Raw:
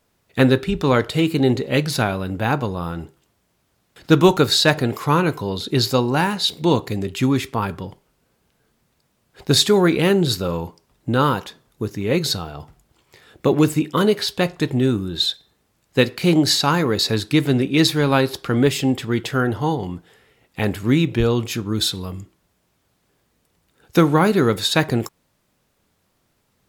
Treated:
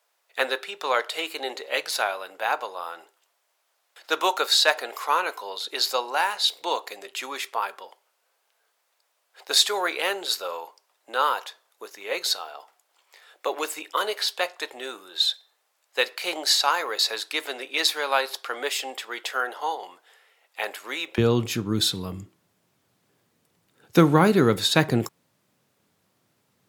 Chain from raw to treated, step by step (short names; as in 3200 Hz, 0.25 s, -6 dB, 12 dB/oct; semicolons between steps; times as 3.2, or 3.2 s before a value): HPF 580 Hz 24 dB/oct, from 21.18 s 100 Hz; gain -2 dB